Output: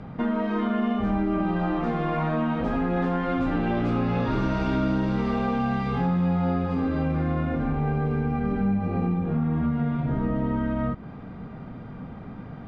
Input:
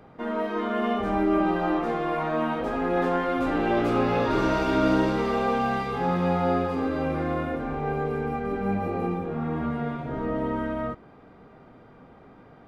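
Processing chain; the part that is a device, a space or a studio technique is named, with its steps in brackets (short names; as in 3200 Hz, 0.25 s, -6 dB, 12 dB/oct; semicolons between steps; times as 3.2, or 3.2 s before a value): jukebox (LPF 5400 Hz 12 dB/oct; resonant low shelf 270 Hz +8 dB, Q 1.5; compressor 4:1, threshold -30 dBFS, peak gain reduction 13.5 dB); gain +6.5 dB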